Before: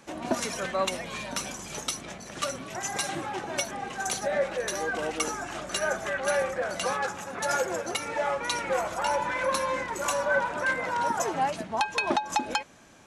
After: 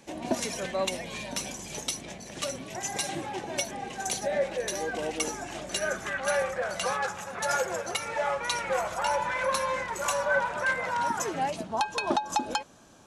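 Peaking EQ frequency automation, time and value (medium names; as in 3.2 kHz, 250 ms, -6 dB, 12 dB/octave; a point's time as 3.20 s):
peaking EQ -10 dB 0.6 oct
5.74 s 1.3 kHz
6.36 s 290 Hz
10.88 s 290 Hz
11.68 s 2.1 kHz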